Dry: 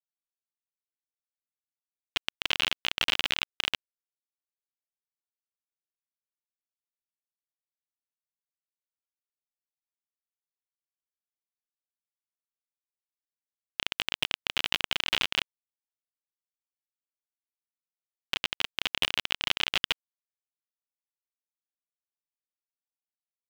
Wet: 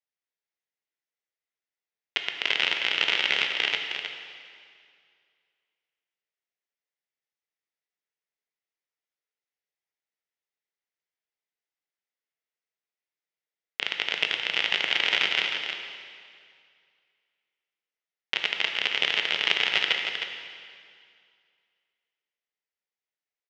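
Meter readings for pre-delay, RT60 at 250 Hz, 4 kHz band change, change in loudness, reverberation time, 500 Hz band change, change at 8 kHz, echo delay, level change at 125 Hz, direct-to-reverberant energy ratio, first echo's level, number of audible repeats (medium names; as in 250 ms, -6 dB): 8 ms, 2.3 s, +4.0 dB, +4.0 dB, 2.2 s, +5.5 dB, -2.5 dB, 312 ms, no reading, 2.0 dB, -7.5 dB, 1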